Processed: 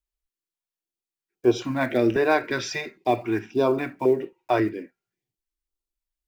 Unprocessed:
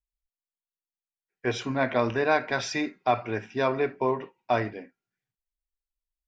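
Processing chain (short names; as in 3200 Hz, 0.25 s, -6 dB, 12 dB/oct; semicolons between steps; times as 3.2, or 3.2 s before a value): block floating point 7-bit; bell 340 Hz +13 dB 0.53 oct; stepped notch 3.7 Hz 220–1900 Hz; gain +1.5 dB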